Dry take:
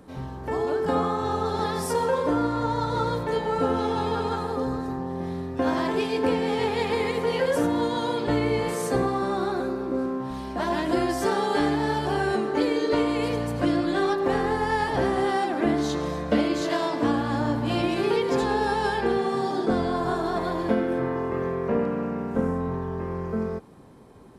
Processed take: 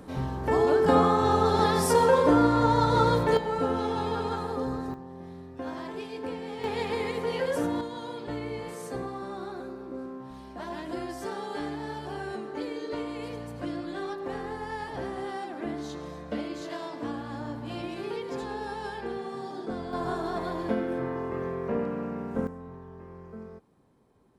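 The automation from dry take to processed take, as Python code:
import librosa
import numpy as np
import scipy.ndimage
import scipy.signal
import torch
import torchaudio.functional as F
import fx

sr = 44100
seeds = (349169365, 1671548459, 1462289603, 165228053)

y = fx.gain(x, sr, db=fx.steps((0.0, 3.5), (3.37, -3.5), (4.94, -12.0), (6.64, -5.0), (7.81, -11.0), (19.93, -5.0), (22.47, -15.0)))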